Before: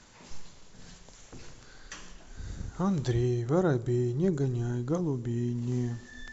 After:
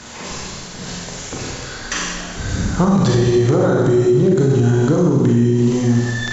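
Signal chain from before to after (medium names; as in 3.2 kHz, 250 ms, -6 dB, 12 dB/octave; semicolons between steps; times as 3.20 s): high-pass 85 Hz 6 dB/octave; compression, threshold -30 dBFS, peak gain reduction 9 dB; Schroeder reverb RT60 1.2 s, combs from 30 ms, DRR -3 dB; loudness maximiser +24.5 dB; trim -5.5 dB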